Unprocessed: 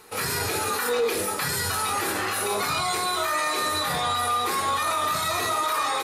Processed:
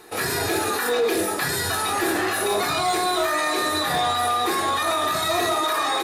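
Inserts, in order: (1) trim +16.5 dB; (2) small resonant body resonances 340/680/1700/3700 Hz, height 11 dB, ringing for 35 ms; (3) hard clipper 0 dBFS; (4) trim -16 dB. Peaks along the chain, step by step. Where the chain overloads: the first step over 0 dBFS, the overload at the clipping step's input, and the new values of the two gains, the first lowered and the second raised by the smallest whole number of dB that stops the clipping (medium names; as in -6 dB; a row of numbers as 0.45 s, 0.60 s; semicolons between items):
+2.0 dBFS, +6.0 dBFS, 0.0 dBFS, -16.0 dBFS; step 1, 6.0 dB; step 1 +10.5 dB, step 4 -10 dB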